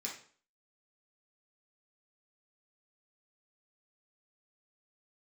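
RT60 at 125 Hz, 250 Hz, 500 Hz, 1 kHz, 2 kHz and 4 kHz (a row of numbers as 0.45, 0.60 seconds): 0.45, 0.50, 0.50, 0.45, 0.45, 0.40 seconds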